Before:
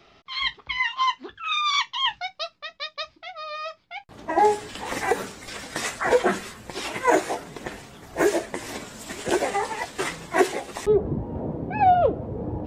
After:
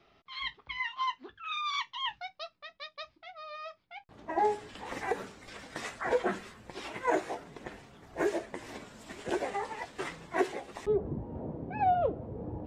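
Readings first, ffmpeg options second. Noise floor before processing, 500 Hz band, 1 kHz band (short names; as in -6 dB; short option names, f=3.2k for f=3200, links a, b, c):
-60 dBFS, -9.0 dB, -9.5 dB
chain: -af "lowpass=f=3.5k:p=1,volume=-9dB"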